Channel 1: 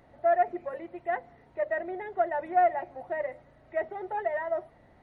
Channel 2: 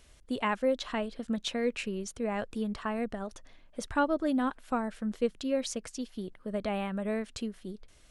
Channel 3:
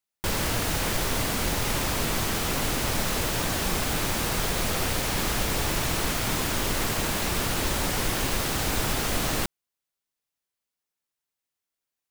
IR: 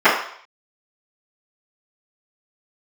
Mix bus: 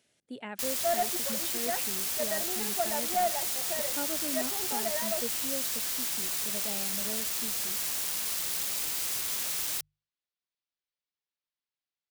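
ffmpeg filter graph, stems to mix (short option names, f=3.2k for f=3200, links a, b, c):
-filter_complex "[0:a]adelay=600,volume=-4.5dB[a];[1:a]highpass=f=130:w=0.5412,highpass=f=130:w=1.3066,equalizer=f=1.1k:t=o:w=0.32:g=-12.5,volume=-8.5dB[b];[2:a]lowpass=f=4.4k:w=0.5412,lowpass=f=4.4k:w=1.3066,aeval=exprs='(mod(26.6*val(0)+1,2)-1)/26.6':c=same,crystalizer=i=3:c=0,adelay=350,volume=-9.5dB[c];[a][b][c]amix=inputs=3:normalize=0,bandreject=f=50:t=h:w=6,bandreject=f=100:t=h:w=6,bandreject=f=150:t=h:w=6,volume=22dB,asoftclip=hard,volume=-22dB"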